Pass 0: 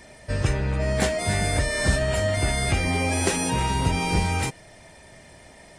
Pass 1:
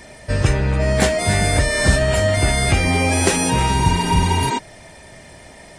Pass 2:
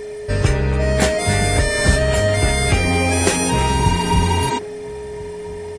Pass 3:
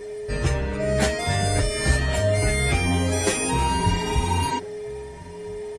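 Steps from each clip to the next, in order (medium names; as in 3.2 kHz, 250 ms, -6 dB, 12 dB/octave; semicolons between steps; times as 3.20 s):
spectral replace 3.82–4.56 s, 210–8900 Hz before; trim +6.5 dB
whistle 420 Hz -27 dBFS; echo from a far wall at 230 m, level -20 dB
endless flanger 7.8 ms +1.3 Hz; trim -2.5 dB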